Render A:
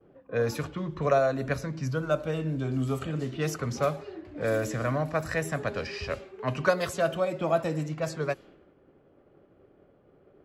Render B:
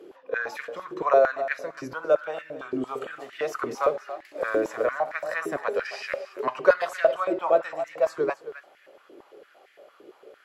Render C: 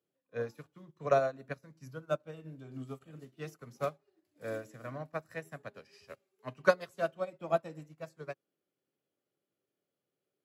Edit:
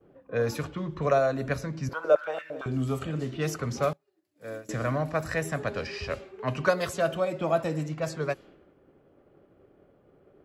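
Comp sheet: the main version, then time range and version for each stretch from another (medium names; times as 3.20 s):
A
1.89–2.66 s: from B
3.93–4.69 s: from C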